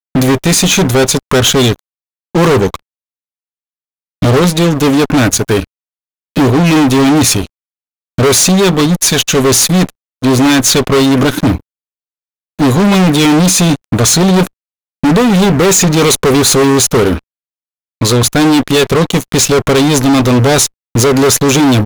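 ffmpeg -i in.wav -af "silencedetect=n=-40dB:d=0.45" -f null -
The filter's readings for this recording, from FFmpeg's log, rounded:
silence_start: 1.79
silence_end: 2.35 | silence_duration: 0.55
silence_start: 2.79
silence_end: 4.22 | silence_duration: 1.43
silence_start: 5.65
silence_end: 6.36 | silence_duration: 0.71
silence_start: 7.47
silence_end: 8.18 | silence_duration: 0.71
silence_start: 11.60
silence_end: 12.59 | silence_duration: 0.98
silence_start: 14.47
silence_end: 15.03 | silence_duration: 0.56
silence_start: 17.19
silence_end: 18.01 | silence_duration: 0.82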